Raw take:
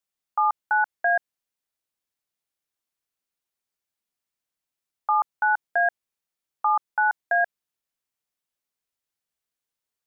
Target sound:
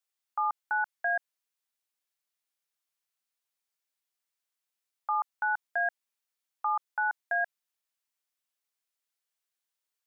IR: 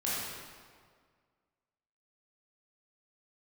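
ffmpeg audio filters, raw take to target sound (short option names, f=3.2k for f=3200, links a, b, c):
-af "highpass=f=840:p=1,alimiter=limit=-21.5dB:level=0:latency=1:release=24"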